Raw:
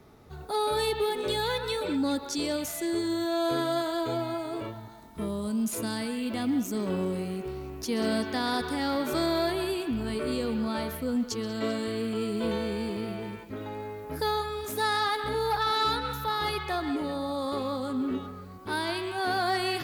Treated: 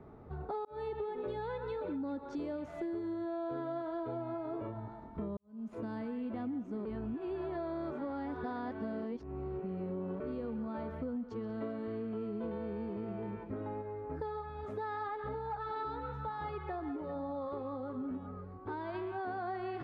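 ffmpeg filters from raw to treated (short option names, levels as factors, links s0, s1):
-filter_complex "[0:a]asplit=3[s0][s1][s2];[s0]afade=t=out:st=13.81:d=0.02[s3];[s1]flanger=delay=1.2:depth=1.3:regen=-49:speed=1.1:shape=sinusoidal,afade=t=in:st=13.81:d=0.02,afade=t=out:st=18.93:d=0.02[s4];[s2]afade=t=in:st=18.93:d=0.02[s5];[s3][s4][s5]amix=inputs=3:normalize=0,asplit=5[s6][s7][s8][s9][s10];[s6]atrim=end=0.65,asetpts=PTS-STARTPTS,afade=t=out:st=0.646:d=0.004:c=hsin[s11];[s7]atrim=start=0.65:end=5.37,asetpts=PTS-STARTPTS,afade=t=in:d=0.57:c=qsin,afade=t=out:st=4.716:d=0.004:c=hsin[s12];[s8]atrim=start=5.37:end=6.852,asetpts=PTS-STARTPTS,afade=t=in:d=0.6:c=qua[s13];[s9]atrim=start=6.848:end=10.202,asetpts=PTS-STARTPTS,areverse[s14];[s10]atrim=start=10.198[s15];[s11][s12][s13]concat=n=3:v=0:a=1[s16];[s16][s14]acrossfade=d=0.004:c1=hsin:c2=hsin[s17];[s17][s15]acrossfade=d=0.004:c1=hsin:c2=hsin,lowpass=1200,acompressor=threshold=0.0126:ratio=6,volume=1.19"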